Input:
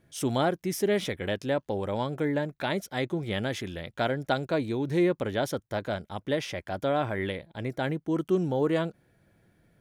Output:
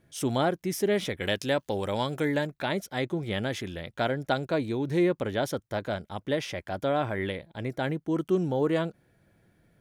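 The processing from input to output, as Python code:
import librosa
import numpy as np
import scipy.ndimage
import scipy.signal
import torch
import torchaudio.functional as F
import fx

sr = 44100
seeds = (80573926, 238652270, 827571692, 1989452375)

y = fx.high_shelf(x, sr, hz=2200.0, db=10.5, at=(1.2, 2.47))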